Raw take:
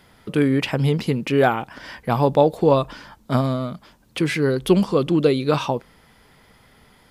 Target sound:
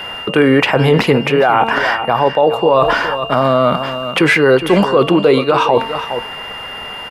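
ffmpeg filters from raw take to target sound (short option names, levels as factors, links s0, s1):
-filter_complex "[0:a]acrossover=split=470 2100:gain=0.178 1 0.2[s0][s1][s2];[s0][s1][s2]amix=inputs=3:normalize=0,bandreject=f=226.6:t=h:w=4,bandreject=f=453.2:t=h:w=4,bandreject=f=679.8:t=h:w=4,bandreject=f=906.4:t=h:w=4,bandreject=f=1133:t=h:w=4,bandreject=f=1359.6:t=h:w=4,bandreject=f=1586.2:t=h:w=4,bandreject=f=1812.8:t=h:w=4,bandreject=f=2039.4:t=h:w=4,bandreject=f=2266:t=h:w=4,bandreject=f=2492.6:t=h:w=4,bandreject=f=2719.2:t=h:w=4,bandreject=f=2945.8:t=h:w=4,bandreject=f=3172.4:t=h:w=4,bandreject=f=3399:t=h:w=4,bandreject=f=3625.6:t=h:w=4,bandreject=f=3852.2:t=h:w=4,bandreject=f=4078.8:t=h:w=4,bandreject=f=4305.4:t=h:w=4,bandreject=f=4532:t=h:w=4,bandreject=f=4758.6:t=h:w=4,bandreject=f=4985.2:t=h:w=4,areverse,acompressor=threshold=0.0224:ratio=10,areverse,aeval=exprs='val(0)+0.00224*sin(2*PI*2800*n/s)':c=same,aecho=1:1:412:0.224,alimiter=level_in=26.6:limit=0.891:release=50:level=0:latency=1,volume=0.891"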